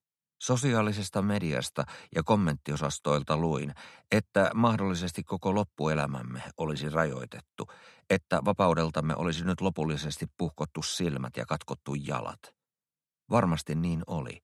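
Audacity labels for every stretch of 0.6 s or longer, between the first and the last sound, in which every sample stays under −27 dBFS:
12.300000	13.320000	silence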